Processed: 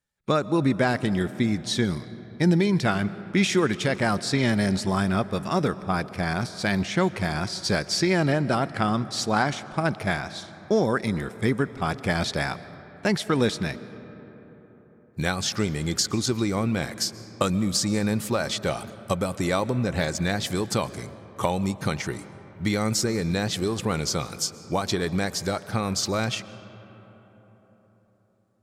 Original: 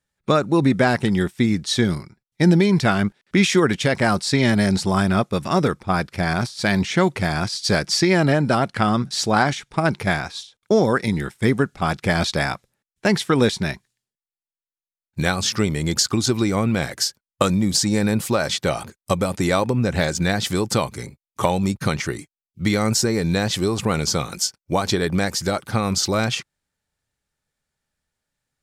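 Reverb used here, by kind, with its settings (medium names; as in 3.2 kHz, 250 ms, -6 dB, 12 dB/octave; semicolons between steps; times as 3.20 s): algorithmic reverb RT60 4.5 s, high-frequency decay 0.4×, pre-delay 90 ms, DRR 15.5 dB; trim -5 dB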